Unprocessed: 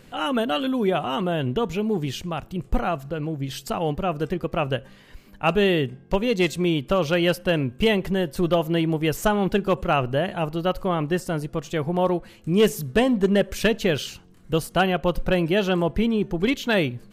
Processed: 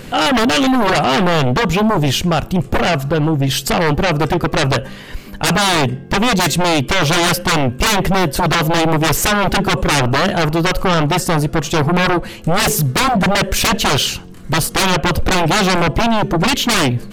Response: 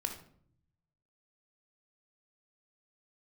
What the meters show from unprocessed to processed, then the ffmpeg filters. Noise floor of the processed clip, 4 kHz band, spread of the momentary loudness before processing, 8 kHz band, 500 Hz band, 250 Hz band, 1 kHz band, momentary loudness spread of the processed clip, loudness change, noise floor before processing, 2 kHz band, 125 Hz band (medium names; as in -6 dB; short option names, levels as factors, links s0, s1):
-33 dBFS, +13.0 dB, 8 LU, +18.5 dB, +4.5 dB, +6.5 dB, +11.5 dB, 3 LU, +8.5 dB, -50 dBFS, +11.5 dB, +10.0 dB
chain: -af "aeval=exprs='0.299*sin(PI/2*4.47*val(0)/0.299)':c=same"